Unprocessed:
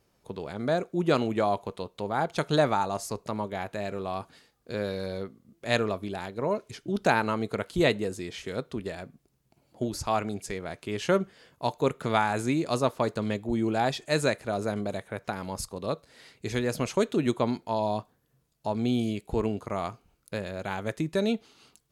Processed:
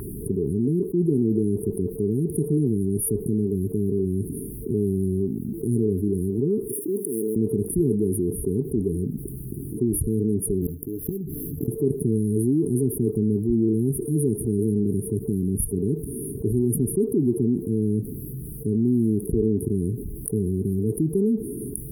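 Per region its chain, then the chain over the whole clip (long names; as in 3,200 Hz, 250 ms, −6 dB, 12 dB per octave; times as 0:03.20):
0:06.68–0:07.36: mu-law and A-law mismatch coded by mu + high-pass filter 620 Hz + volume swells 125 ms
0:10.61–0:11.68: gap after every zero crossing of 0.13 ms + EQ curve with evenly spaced ripples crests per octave 1.1, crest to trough 12 dB + gate with flip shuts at −25 dBFS, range −26 dB
whole clip: brick-wall band-stop 450–9,200 Hz; flat-topped bell 1,300 Hz +11 dB 1.3 octaves; envelope flattener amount 70%; level +2.5 dB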